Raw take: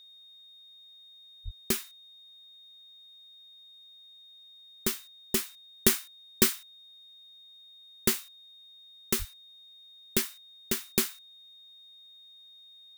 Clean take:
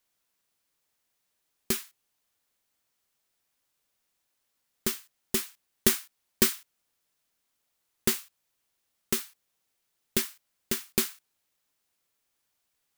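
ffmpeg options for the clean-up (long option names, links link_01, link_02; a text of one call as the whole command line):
ffmpeg -i in.wav -filter_complex "[0:a]bandreject=frequency=3700:width=30,asplit=3[link_01][link_02][link_03];[link_01]afade=type=out:start_time=1.44:duration=0.02[link_04];[link_02]highpass=frequency=140:width=0.5412,highpass=frequency=140:width=1.3066,afade=type=in:start_time=1.44:duration=0.02,afade=type=out:start_time=1.56:duration=0.02[link_05];[link_03]afade=type=in:start_time=1.56:duration=0.02[link_06];[link_04][link_05][link_06]amix=inputs=3:normalize=0,asplit=3[link_07][link_08][link_09];[link_07]afade=type=out:start_time=9.18:duration=0.02[link_10];[link_08]highpass=frequency=140:width=0.5412,highpass=frequency=140:width=1.3066,afade=type=in:start_time=9.18:duration=0.02,afade=type=out:start_time=9.3:duration=0.02[link_11];[link_09]afade=type=in:start_time=9.3:duration=0.02[link_12];[link_10][link_11][link_12]amix=inputs=3:normalize=0" out.wav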